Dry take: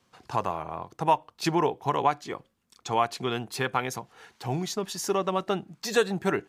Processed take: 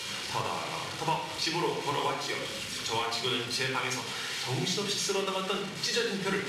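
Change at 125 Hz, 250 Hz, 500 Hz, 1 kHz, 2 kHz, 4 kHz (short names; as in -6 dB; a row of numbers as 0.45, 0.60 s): -3.5, -5.0, -4.5, -5.5, +1.5, +7.0 dB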